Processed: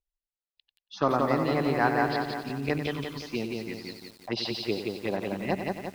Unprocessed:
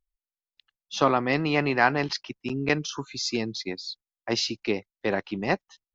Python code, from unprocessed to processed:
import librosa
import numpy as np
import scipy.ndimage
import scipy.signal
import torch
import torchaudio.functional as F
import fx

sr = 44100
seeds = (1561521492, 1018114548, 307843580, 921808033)

p1 = fx.env_phaser(x, sr, low_hz=230.0, high_hz=3100.0, full_db=-20.0)
p2 = scipy.signal.sosfilt(scipy.signal.butter(4, 4800.0, 'lowpass', fs=sr, output='sos'), p1)
p3 = p2 + fx.echo_feedback(p2, sr, ms=93, feedback_pct=32, wet_db=-9.5, dry=0)
p4 = fx.cheby_harmonics(p3, sr, harmonics=(4,), levels_db=(-29,), full_scale_db=-7.0)
p5 = fx.echo_crushed(p4, sr, ms=175, feedback_pct=55, bits=8, wet_db=-3)
y = p5 * 10.0 ** (-3.0 / 20.0)